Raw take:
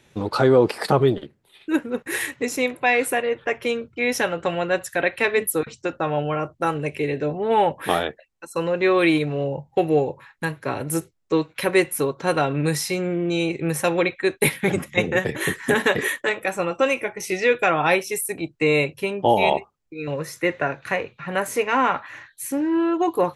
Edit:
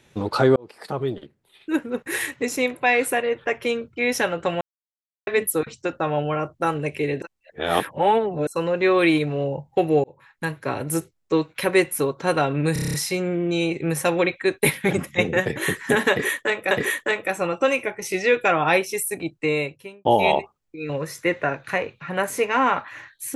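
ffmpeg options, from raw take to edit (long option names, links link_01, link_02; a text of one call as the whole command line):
ffmpeg -i in.wav -filter_complex "[0:a]asplit=16[link_01][link_02][link_03][link_04][link_05][link_06][link_07][link_08][link_09][link_10][link_11][link_12][link_13][link_14][link_15][link_16];[link_01]atrim=end=0.56,asetpts=PTS-STARTPTS,afade=type=out:start_time=0.556:duration=0.004:curve=hsin[link_17];[link_02]atrim=start=0.56:end=4.61,asetpts=PTS-STARTPTS,afade=type=in:duration=1.87:curve=qsin,afade=type=out:start_time=4.046:duration=0.004:curve=hsin[link_18];[link_03]atrim=start=4.61:end=5.27,asetpts=PTS-STARTPTS,volume=0[link_19];[link_04]atrim=start=5.27:end=7.222,asetpts=PTS-STARTPTS,afade=type=in:duration=0.004:curve=hsin[link_20];[link_05]atrim=start=7.218:end=8.472,asetpts=PTS-STARTPTS,areverse[link_21];[link_06]atrim=start=8.468:end=10.04,asetpts=PTS-STARTPTS,afade=type=out:start_time=1.568:duration=0.004:curve=hsin[link_22];[link_07]atrim=start=10.04:end=12.762,asetpts=PTS-STARTPTS,afade=type=in:duration=0.59:curve=qsin[link_23];[link_08]atrim=start=12.728:end=12.762[link_24];[link_09]atrim=start=12.728:end=12.762[link_25];[link_10]atrim=start=12.728:end=12.762[link_26];[link_11]atrim=start=12.728:end=12.762[link_27];[link_12]atrim=start=12.728:end=12.762[link_28];[link_13]atrim=start=12.728:end=12.762[link_29];[link_14]atrim=start=12.728:end=16.502[link_30];[link_15]atrim=start=15.888:end=19.23,asetpts=PTS-STARTPTS,afade=type=out:start_time=2.532:duration=0.81[link_31];[link_16]atrim=start=19.23,asetpts=PTS-STARTPTS,afade=type=in:duration=0.004:curve=hsin[link_32];[link_17][link_18][link_19][link_20]concat=n=4:v=0:a=1[link_33];[link_33][link_21]acrossfade=duration=0.004:curve1=hsin:curve2=hsin[link_34];[link_22][link_23]concat=n=2:v=0:a=1[link_35];[link_34][link_35]acrossfade=duration=0.004:curve1=hsin:curve2=hsin[link_36];[link_36][link_24]acrossfade=duration=0.004:curve1=hsin:curve2=hsin[link_37];[link_37][link_25]acrossfade=duration=0.004:curve1=hsin:curve2=hsin[link_38];[link_38][link_26]acrossfade=duration=0.004:curve1=hsin:curve2=hsin[link_39];[link_39][link_27]acrossfade=duration=0.004:curve1=hsin:curve2=hsin[link_40];[link_40][link_28]acrossfade=duration=0.004:curve1=hsin:curve2=hsin[link_41];[link_41][link_29]acrossfade=duration=0.004:curve1=hsin:curve2=hsin[link_42];[link_42][link_30]acrossfade=duration=0.004:curve1=hsin:curve2=hsin[link_43];[link_31][link_32]concat=n=2:v=0:a=1[link_44];[link_43][link_44]acrossfade=duration=0.004:curve1=hsin:curve2=hsin" out.wav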